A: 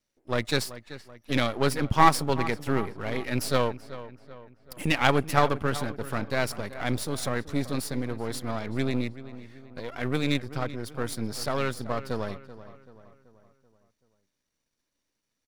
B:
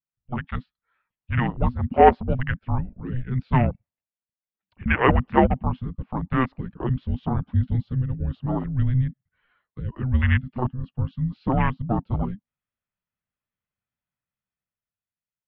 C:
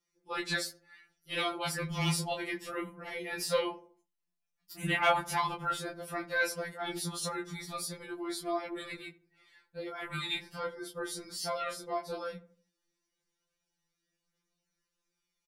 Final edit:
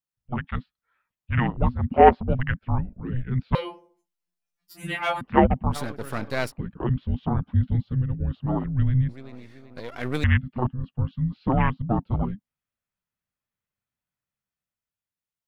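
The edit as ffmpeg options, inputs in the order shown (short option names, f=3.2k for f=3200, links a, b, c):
-filter_complex "[0:a]asplit=2[a][b];[1:a]asplit=4[c][d][e][f];[c]atrim=end=3.552[g];[2:a]atrim=start=3.548:end=5.212[h];[d]atrim=start=5.208:end=5.77[i];[a]atrim=start=5.71:end=6.52[j];[e]atrim=start=6.46:end=9.092[k];[b]atrim=start=9.088:end=10.242[l];[f]atrim=start=10.238[m];[g][h]acrossfade=d=0.004:c1=hsin:c2=hsin[n];[n][i]acrossfade=d=0.004:c1=hsin:c2=hsin[o];[o][j]acrossfade=d=0.06:c1=tri:c2=tri[p];[p][k]acrossfade=d=0.06:c1=tri:c2=tri[q];[q][l]acrossfade=d=0.004:c1=hsin:c2=hsin[r];[r][m]acrossfade=d=0.004:c1=hsin:c2=hsin"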